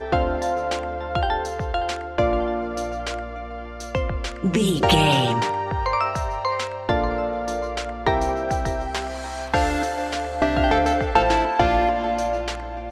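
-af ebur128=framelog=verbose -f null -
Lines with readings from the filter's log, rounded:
Integrated loudness:
  I:         -22.9 LUFS
  Threshold: -33.0 LUFS
Loudness range:
  LRA:         4.6 LU
  Threshold: -43.1 LUFS
  LRA low:   -25.8 LUFS
  LRA high:  -21.2 LUFS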